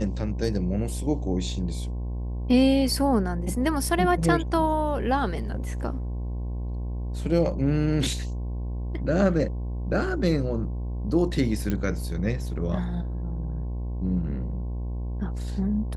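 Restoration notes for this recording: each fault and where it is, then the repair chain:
mains buzz 60 Hz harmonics 18 −30 dBFS
0:11.70: click −15 dBFS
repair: click removal
hum removal 60 Hz, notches 18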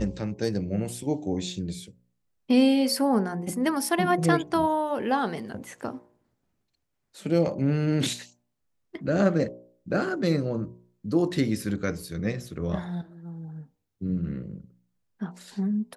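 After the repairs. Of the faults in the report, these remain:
none of them is left

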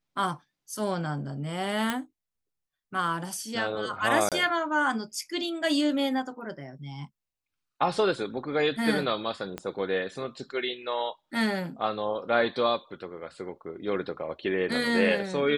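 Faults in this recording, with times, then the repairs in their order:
0:01.90: click −13 dBFS
0:04.29–0:04.32: drop-out 27 ms
0:09.58: click −19 dBFS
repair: click removal
repair the gap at 0:04.29, 27 ms

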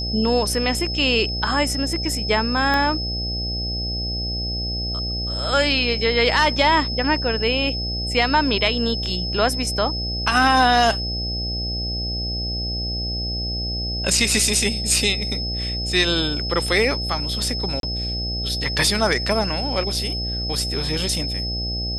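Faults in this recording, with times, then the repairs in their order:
mains buzz 60 Hz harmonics 13 −28 dBFS
whistle 5,200 Hz −26 dBFS
0:02.74: click −9 dBFS
0:17.80–0:17.83: drop-out 32 ms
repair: click removal
hum removal 60 Hz, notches 13
notch filter 5,200 Hz, Q 30
repair the gap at 0:17.80, 32 ms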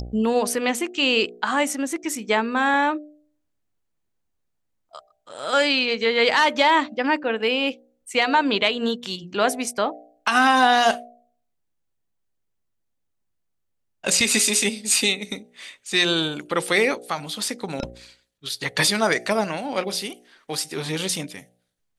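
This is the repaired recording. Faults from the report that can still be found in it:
0:02.74: click

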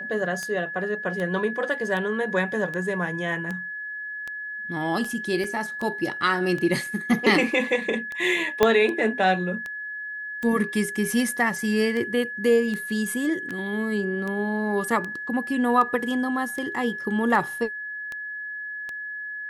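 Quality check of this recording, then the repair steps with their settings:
scratch tick 78 rpm −19 dBFS
whistle 1,700 Hz −31 dBFS
0:05.44: drop-out 3.2 ms
0:08.63: click −5 dBFS
0:13.49: drop-out 4.8 ms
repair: click removal
notch filter 1,700 Hz, Q 30
repair the gap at 0:05.44, 3.2 ms
repair the gap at 0:13.49, 4.8 ms

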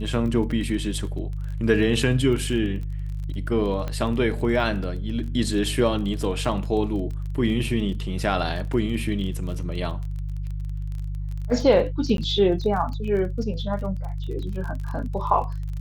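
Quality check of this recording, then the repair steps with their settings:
surface crackle 27 per second −32 dBFS
mains hum 50 Hz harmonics 3 −29 dBFS
0:03.88: click −17 dBFS
0:12.17–0:12.18: drop-out 12 ms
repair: click removal
hum removal 50 Hz, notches 3
repair the gap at 0:12.17, 12 ms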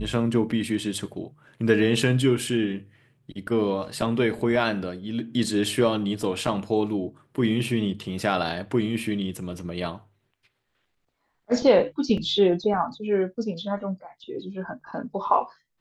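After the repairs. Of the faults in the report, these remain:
none of them is left

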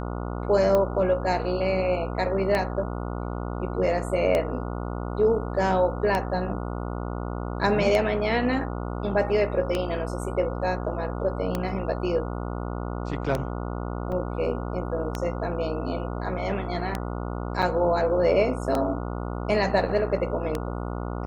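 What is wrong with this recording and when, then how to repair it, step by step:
mains buzz 60 Hz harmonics 24 −31 dBFS
scratch tick 33 1/3 rpm −12 dBFS
0:14.12: drop-out 4.1 ms
0:17.62–0:17.63: drop-out 6.2 ms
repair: click removal
hum removal 60 Hz, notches 24
repair the gap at 0:14.12, 4.1 ms
repair the gap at 0:17.62, 6.2 ms

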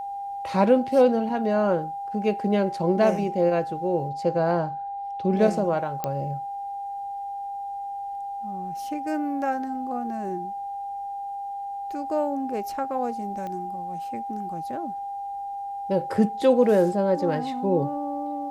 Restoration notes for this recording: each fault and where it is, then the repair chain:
whistle 800 Hz −30 dBFS
0:06.04: click −13 dBFS
0:13.47: click −23 dBFS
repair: click removal
notch filter 800 Hz, Q 30

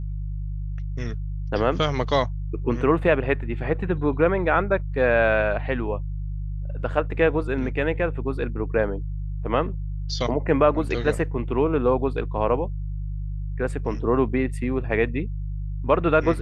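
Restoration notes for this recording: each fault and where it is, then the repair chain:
mains hum 50 Hz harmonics 3 −29 dBFS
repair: hum removal 50 Hz, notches 3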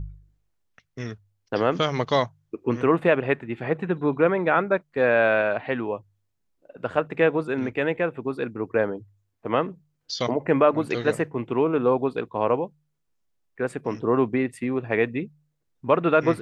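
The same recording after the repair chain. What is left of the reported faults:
none of them is left

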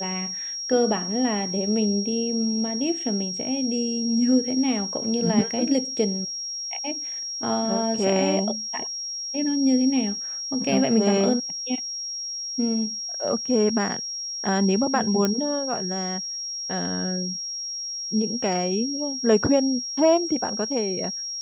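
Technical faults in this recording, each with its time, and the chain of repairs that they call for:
whistle 5,600 Hz −29 dBFS
0:15.25: click −9 dBFS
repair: click removal
notch filter 5,600 Hz, Q 30

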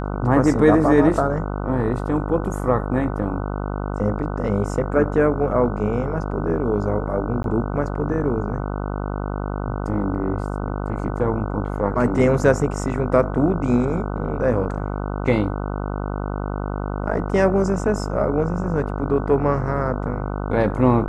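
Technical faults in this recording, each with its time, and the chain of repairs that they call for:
mains buzz 50 Hz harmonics 30 −26 dBFS
0:07.43–0:07.44: drop-out 12 ms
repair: hum removal 50 Hz, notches 30
repair the gap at 0:07.43, 12 ms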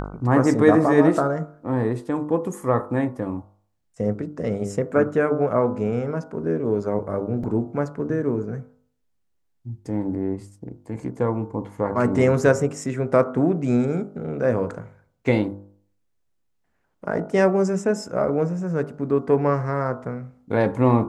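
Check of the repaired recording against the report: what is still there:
none of them is left

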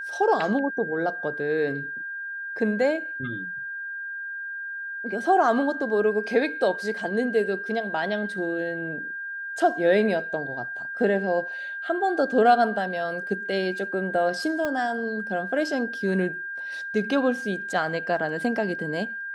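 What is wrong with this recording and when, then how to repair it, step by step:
whistle 1,600 Hz −31 dBFS
0:14.65: click −15 dBFS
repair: click removal
notch filter 1,600 Hz, Q 30

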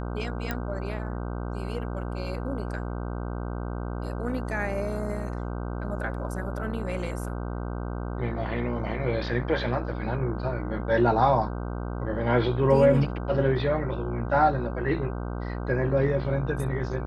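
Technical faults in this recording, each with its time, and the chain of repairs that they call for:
mains buzz 60 Hz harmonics 26 −32 dBFS
0:00.51: click −15 dBFS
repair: click removal
hum removal 60 Hz, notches 26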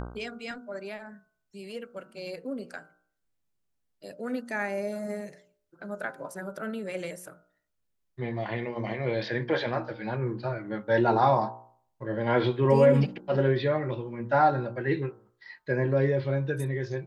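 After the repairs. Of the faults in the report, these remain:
0:00.51: click

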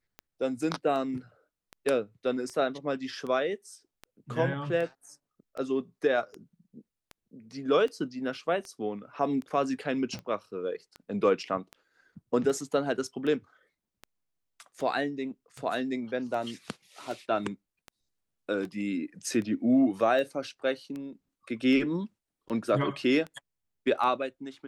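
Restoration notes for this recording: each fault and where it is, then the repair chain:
scratch tick 78 rpm −26 dBFS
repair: click removal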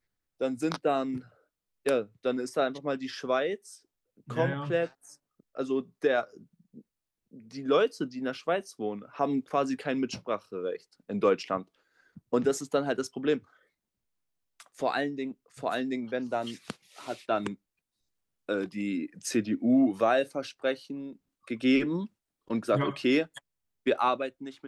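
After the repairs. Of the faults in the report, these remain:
none of them is left

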